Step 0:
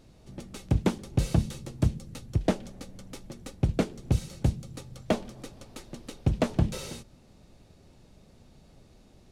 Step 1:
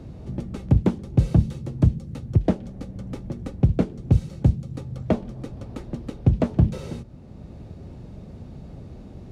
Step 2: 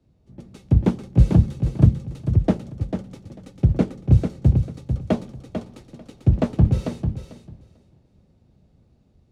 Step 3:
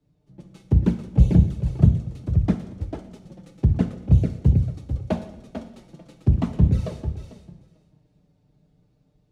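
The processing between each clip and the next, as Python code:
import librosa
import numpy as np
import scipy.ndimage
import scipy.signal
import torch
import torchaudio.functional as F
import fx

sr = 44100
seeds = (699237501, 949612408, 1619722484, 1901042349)

y1 = scipy.signal.sosfilt(scipy.signal.butter(2, 68.0, 'highpass', fs=sr, output='sos'), x)
y1 = fx.tilt_eq(y1, sr, slope=-3.0)
y1 = fx.band_squash(y1, sr, depth_pct=40)
y2 = fx.echo_feedback(y1, sr, ms=445, feedback_pct=34, wet_db=-4.0)
y2 = fx.band_widen(y2, sr, depth_pct=100)
y2 = y2 * librosa.db_to_amplitude(-1.0)
y3 = fx.env_flanger(y2, sr, rest_ms=6.8, full_db=-10.5)
y3 = fx.rev_double_slope(y3, sr, seeds[0], early_s=0.79, late_s=2.0, knee_db=-18, drr_db=8.0)
y3 = y3 * librosa.db_to_amplitude(-1.0)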